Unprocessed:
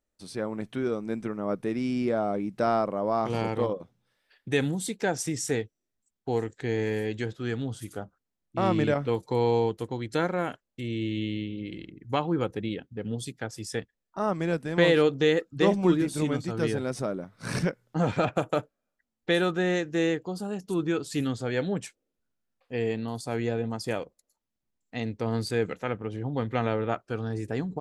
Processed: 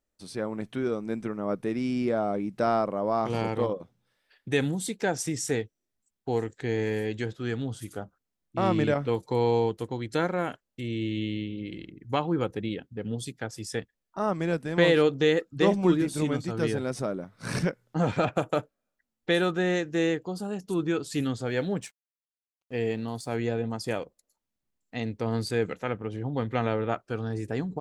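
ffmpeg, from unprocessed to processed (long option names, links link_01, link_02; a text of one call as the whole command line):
ffmpeg -i in.wav -filter_complex "[0:a]asettb=1/sr,asplit=3[link_01][link_02][link_03];[link_01]atrim=end=21.464[link_04];[link_02]atrim=start=21.46:end=23.32,asetpts=PTS-STARTPTS,afade=type=in:duration=0.004:curve=qsin,afade=type=out:start_time=1.856:duration=0.004:curve=qsin,aeval=exprs='sgn(val(0))*max(abs(val(0))-0.00106,0)':channel_layout=same[link_05];[link_03]atrim=start=23.316[link_06];[link_04][link_05]acrossfade=duration=0.004:curve1=hsin:curve2=qsin[link_07];[link_07][link_06]acrossfade=duration=0.004:curve1=qsin:curve2=hsin" out.wav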